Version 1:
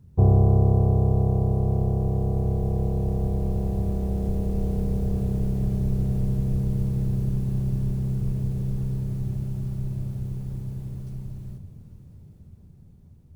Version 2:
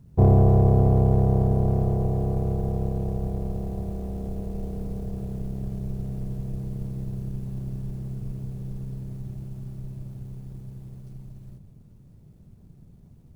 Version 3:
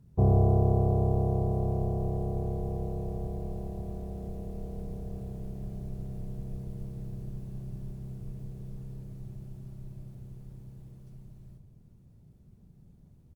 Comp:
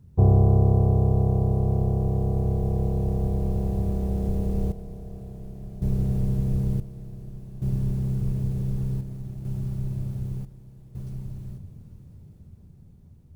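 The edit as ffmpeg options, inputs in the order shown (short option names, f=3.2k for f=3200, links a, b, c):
-filter_complex "[2:a]asplit=3[a][b][c];[0:a]asplit=5[d][e][f][g][h];[d]atrim=end=4.722[i];[a]atrim=start=4.718:end=5.822[j];[e]atrim=start=5.818:end=6.802[k];[b]atrim=start=6.798:end=7.622[l];[f]atrim=start=7.618:end=9.012[m];[1:a]atrim=start=9.008:end=9.452[n];[g]atrim=start=9.448:end=10.452[o];[c]atrim=start=10.448:end=10.952[p];[h]atrim=start=10.948[q];[i][j]acrossfade=d=0.004:c1=hsin:c2=hsin[r];[r][k]acrossfade=d=0.004:c1=hsin:c2=hsin[s];[s][l]acrossfade=d=0.004:c1=hsin:c2=hsin[t];[t][m]acrossfade=d=0.004:c1=hsin:c2=hsin[u];[u][n]acrossfade=d=0.004:c1=hsin:c2=hsin[v];[v][o]acrossfade=d=0.004:c1=hsin:c2=hsin[w];[w][p]acrossfade=d=0.004:c1=hsin:c2=hsin[x];[x][q]acrossfade=d=0.004:c1=hsin:c2=hsin"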